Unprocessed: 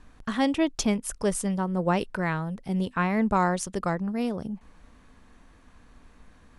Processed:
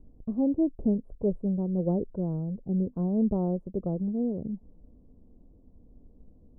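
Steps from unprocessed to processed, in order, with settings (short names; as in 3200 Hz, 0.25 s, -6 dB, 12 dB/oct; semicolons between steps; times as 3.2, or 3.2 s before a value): inverse Chebyshev low-pass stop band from 1800 Hz, stop band 60 dB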